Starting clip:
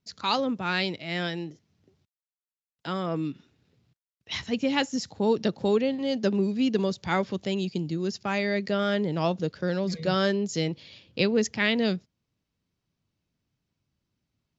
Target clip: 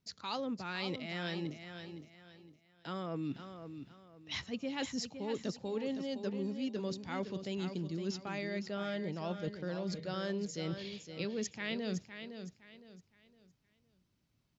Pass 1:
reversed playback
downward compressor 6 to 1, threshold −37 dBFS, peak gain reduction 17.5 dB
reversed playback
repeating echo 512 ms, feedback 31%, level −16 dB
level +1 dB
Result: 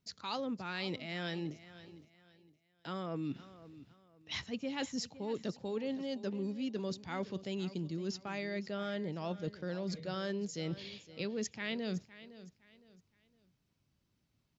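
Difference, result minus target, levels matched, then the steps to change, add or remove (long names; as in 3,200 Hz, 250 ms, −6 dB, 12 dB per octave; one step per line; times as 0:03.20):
echo-to-direct −7 dB
change: repeating echo 512 ms, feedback 31%, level −9 dB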